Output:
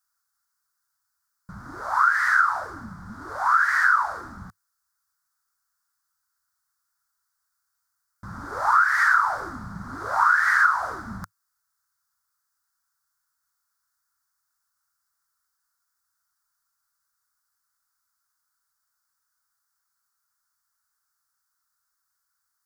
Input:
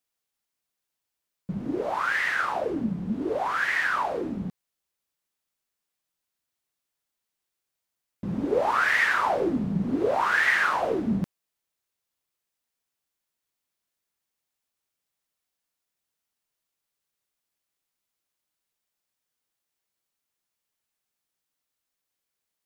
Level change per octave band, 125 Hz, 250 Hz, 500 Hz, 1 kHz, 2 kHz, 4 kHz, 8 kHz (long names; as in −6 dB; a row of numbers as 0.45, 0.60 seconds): −7.5, −13.5, −12.5, +6.0, +4.0, −6.0, +2.5 decibels